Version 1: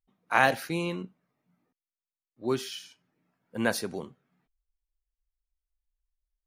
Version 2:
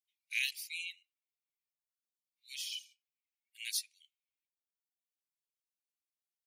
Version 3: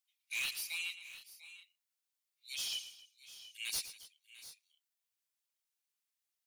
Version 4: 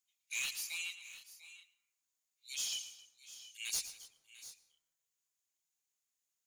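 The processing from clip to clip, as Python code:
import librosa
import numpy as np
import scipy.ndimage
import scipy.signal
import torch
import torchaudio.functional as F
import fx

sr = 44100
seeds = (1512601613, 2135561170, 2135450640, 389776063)

y1 = scipy.signal.sosfilt(scipy.signal.butter(12, 2200.0, 'highpass', fs=sr, output='sos'), x)
y1 = fx.dereverb_blind(y1, sr, rt60_s=1.1)
y2 = fx.highpass(y1, sr, hz=1500.0, slope=6)
y2 = 10.0 ** (-38.5 / 20.0) * np.tanh(y2 / 10.0 ** (-38.5 / 20.0))
y2 = fx.echo_multitap(y2, sr, ms=(114, 268, 695, 727), db=(-13.0, -19.5, -17.0, -19.0))
y2 = y2 * 10.0 ** (5.5 / 20.0)
y3 = fx.peak_eq(y2, sr, hz=6800.0, db=12.5, octaves=0.26)
y3 = fx.hum_notches(y3, sr, base_hz=50, count=2)
y3 = fx.rev_plate(y3, sr, seeds[0], rt60_s=1.4, hf_ratio=0.35, predelay_ms=90, drr_db=16.5)
y3 = y3 * 10.0 ** (-2.0 / 20.0)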